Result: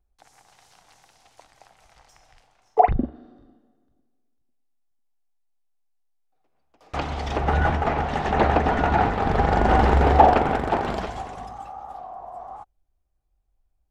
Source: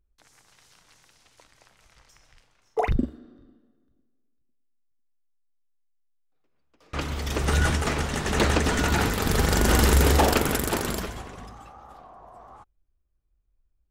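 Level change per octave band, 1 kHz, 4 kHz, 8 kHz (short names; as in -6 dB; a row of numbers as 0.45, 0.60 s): +9.5 dB, -8.0 dB, under -15 dB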